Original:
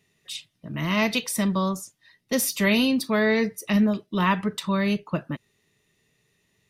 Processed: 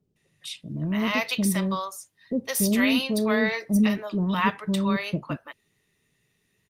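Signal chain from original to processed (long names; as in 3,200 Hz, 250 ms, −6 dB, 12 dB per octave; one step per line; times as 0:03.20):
multiband delay without the direct sound lows, highs 160 ms, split 550 Hz
Opus 32 kbit/s 48,000 Hz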